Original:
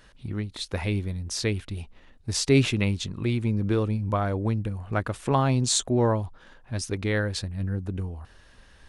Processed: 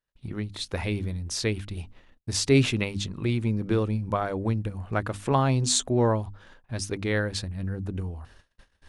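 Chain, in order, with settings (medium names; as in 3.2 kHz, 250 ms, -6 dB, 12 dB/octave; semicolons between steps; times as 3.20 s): hum notches 50/100/150/200/250/300 Hz; gate -50 dBFS, range -35 dB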